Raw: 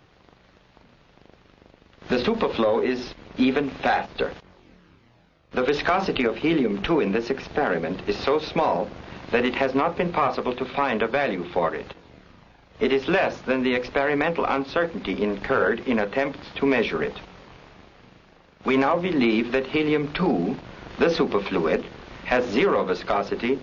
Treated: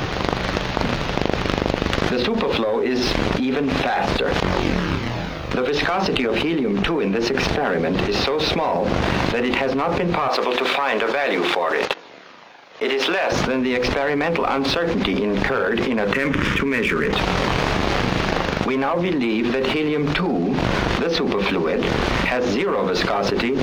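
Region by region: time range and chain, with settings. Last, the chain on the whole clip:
10.28–13.32 Bessel high-pass 540 Hz + gate -44 dBFS, range -20 dB
16.13–17.13 compressor, threshold -36 dBFS + fixed phaser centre 1800 Hz, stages 4
whole clip: sample leveller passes 1; fast leveller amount 100%; gain -6 dB

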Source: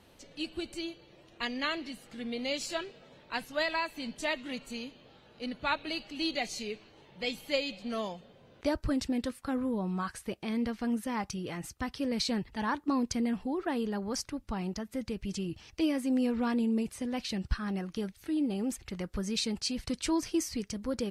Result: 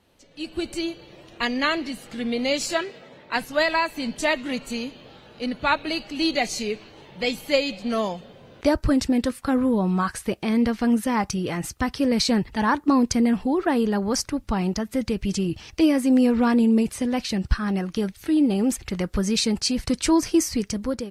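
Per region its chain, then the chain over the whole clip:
2.75–3.36 HPF 160 Hz 6 dB/oct + bell 2000 Hz +7 dB 0.21 oct + mismatched tape noise reduction decoder only
whole clip: dynamic EQ 3300 Hz, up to -4 dB, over -49 dBFS, Q 1.5; AGC gain up to 15 dB; gain -4 dB

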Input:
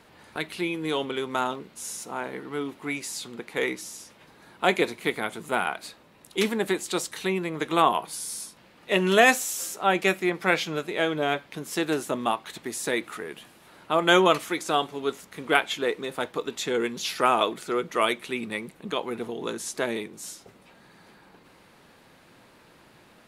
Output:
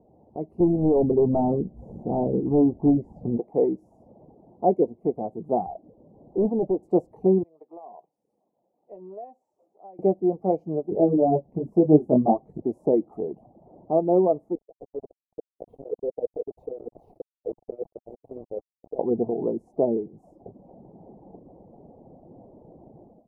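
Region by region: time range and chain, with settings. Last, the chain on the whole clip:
0.6–3.38 RIAA curve playback + overloaded stage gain 23.5 dB + doubler 17 ms -13.5 dB
5.66–6.83 LPF 1500 Hz + dynamic EQ 300 Hz, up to -5 dB, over -38 dBFS, Q 1.1 + hard clip -26.5 dBFS
7.43–9.99 LPF 2300 Hz + differentiator + compressor 3:1, threshold -40 dBFS
10.9–12.62 low shelf 390 Hz +10 dB + detuned doubles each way 22 cents
14.55–18.99 negative-ratio compressor -30 dBFS, ratio -0.5 + double band-pass 1300 Hz, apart 2.8 oct + sample gate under -38 dBFS
whole clip: AGC gain up to 10.5 dB; reverb removal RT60 0.55 s; elliptic low-pass 750 Hz, stop band 50 dB

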